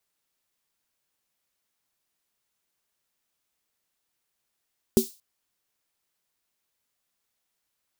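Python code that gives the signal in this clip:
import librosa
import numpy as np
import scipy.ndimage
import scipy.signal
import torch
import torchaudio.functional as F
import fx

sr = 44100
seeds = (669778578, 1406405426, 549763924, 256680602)

y = fx.drum_snare(sr, seeds[0], length_s=0.23, hz=230.0, second_hz=380.0, noise_db=-12.0, noise_from_hz=3900.0, decay_s=0.13, noise_decay_s=0.34)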